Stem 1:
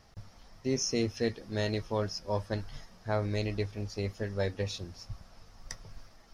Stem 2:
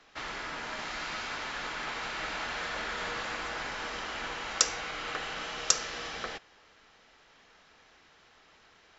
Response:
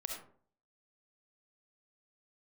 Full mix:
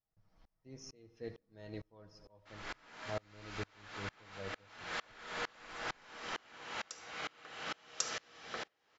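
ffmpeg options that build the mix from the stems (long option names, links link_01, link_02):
-filter_complex "[0:a]lowpass=frequency=2000:poles=1,aecho=1:1:6.3:0.41,volume=-9dB,asplit=4[link_01][link_02][link_03][link_04];[link_02]volume=-14dB[link_05];[link_03]volume=-18dB[link_06];[1:a]highpass=89,adelay=2300,volume=-1dB,asplit=2[link_07][link_08];[link_08]volume=-13.5dB[link_09];[link_04]apad=whole_len=497652[link_10];[link_07][link_10]sidechaincompress=threshold=-44dB:ratio=8:attack=42:release=451[link_11];[2:a]atrim=start_sample=2205[link_12];[link_05][link_09]amix=inputs=2:normalize=0[link_13];[link_13][link_12]afir=irnorm=-1:irlink=0[link_14];[link_06]aecho=0:1:87|174|261|348|435|522|609|696:1|0.56|0.314|0.176|0.0983|0.0551|0.0308|0.0173[link_15];[link_01][link_11][link_14][link_15]amix=inputs=4:normalize=0,aeval=exprs='val(0)*pow(10,-31*if(lt(mod(-2.2*n/s,1),2*abs(-2.2)/1000),1-mod(-2.2*n/s,1)/(2*abs(-2.2)/1000),(mod(-2.2*n/s,1)-2*abs(-2.2)/1000)/(1-2*abs(-2.2)/1000))/20)':channel_layout=same"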